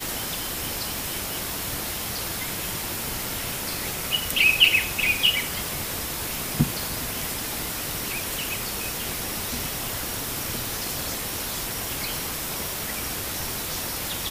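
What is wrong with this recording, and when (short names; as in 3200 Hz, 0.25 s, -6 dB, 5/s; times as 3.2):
11.36 pop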